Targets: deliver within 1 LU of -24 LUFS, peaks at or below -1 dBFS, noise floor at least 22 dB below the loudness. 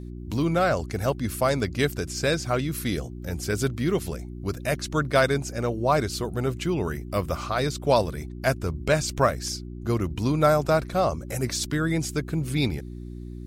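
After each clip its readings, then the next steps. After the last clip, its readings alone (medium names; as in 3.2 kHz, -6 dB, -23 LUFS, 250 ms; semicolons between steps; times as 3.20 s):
hum 60 Hz; highest harmonic 360 Hz; hum level -34 dBFS; loudness -26.0 LUFS; peak level -6.5 dBFS; loudness target -24.0 LUFS
-> de-hum 60 Hz, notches 6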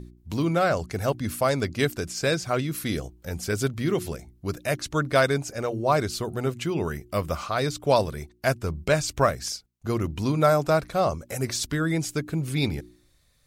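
hum not found; loudness -26.0 LUFS; peak level -7.0 dBFS; loudness target -24.0 LUFS
-> trim +2 dB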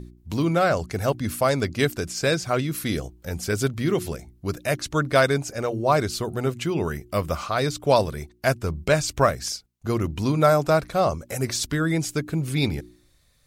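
loudness -24.0 LUFS; peak level -5.0 dBFS; noise floor -60 dBFS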